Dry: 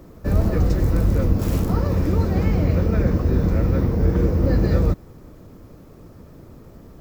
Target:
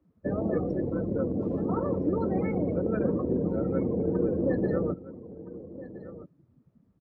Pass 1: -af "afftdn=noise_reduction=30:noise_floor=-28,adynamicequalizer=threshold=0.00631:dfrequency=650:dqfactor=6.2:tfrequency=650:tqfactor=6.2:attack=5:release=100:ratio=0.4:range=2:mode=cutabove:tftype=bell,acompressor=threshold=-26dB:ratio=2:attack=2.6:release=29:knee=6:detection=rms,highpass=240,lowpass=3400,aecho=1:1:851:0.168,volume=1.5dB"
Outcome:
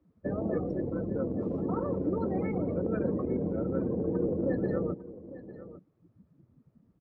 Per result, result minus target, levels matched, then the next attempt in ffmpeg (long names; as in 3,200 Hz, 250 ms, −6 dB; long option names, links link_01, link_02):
echo 467 ms early; downward compressor: peak gain reduction +3 dB
-af "afftdn=noise_reduction=30:noise_floor=-28,adynamicequalizer=threshold=0.00631:dfrequency=650:dqfactor=6.2:tfrequency=650:tqfactor=6.2:attack=5:release=100:ratio=0.4:range=2:mode=cutabove:tftype=bell,acompressor=threshold=-26dB:ratio=2:attack=2.6:release=29:knee=6:detection=rms,highpass=240,lowpass=3400,aecho=1:1:1318:0.168,volume=1.5dB"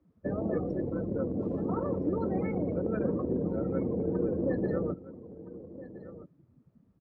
downward compressor: peak gain reduction +3 dB
-af "afftdn=noise_reduction=30:noise_floor=-28,adynamicequalizer=threshold=0.00631:dfrequency=650:dqfactor=6.2:tfrequency=650:tqfactor=6.2:attack=5:release=100:ratio=0.4:range=2:mode=cutabove:tftype=bell,acompressor=threshold=-19.5dB:ratio=2:attack=2.6:release=29:knee=6:detection=rms,highpass=240,lowpass=3400,aecho=1:1:1318:0.168,volume=1.5dB"